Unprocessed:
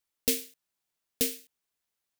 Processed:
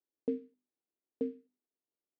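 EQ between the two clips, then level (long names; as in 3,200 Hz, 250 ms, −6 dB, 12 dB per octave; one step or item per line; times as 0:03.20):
four-pole ladder band-pass 390 Hz, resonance 40%
spectral tilt −3 dB per octave
mains-hum notches 50/100/150/200/250/300/350/400 Hz
+5.5 dB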